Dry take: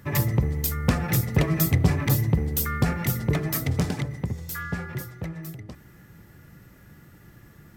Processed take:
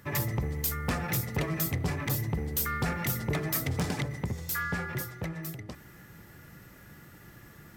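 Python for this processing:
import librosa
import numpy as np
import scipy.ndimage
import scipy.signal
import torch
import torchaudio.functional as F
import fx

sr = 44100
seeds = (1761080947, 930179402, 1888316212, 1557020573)

y = fx.rider(x, sr, range_db=3, speed_s=0.5)
y = fx.low_shelf(y, sr, hz=340.0, db=-6.5)
y = 10.0 ** (-22.0 / 20.0) * np.tanh(y / 10.0 ** (-22.0 / 20.0))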